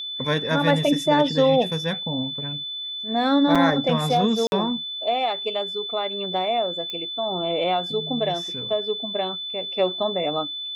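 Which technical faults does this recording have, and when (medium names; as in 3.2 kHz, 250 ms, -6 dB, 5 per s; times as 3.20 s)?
whine 3.5 kHz -29 dBFS
3.55–3.56 s: dropout 5.7 ms
4.47–4.52 s: dropout 51 ms
6.90 s: pop -18 dBFS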